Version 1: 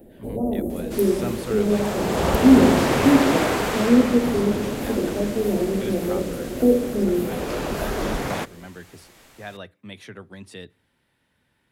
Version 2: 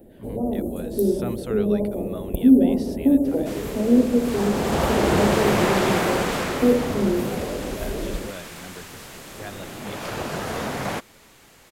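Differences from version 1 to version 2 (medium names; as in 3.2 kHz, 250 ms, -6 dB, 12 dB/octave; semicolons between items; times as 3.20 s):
speech: send off; first sound: send -6.0 dB; second sound: entry +2.55 s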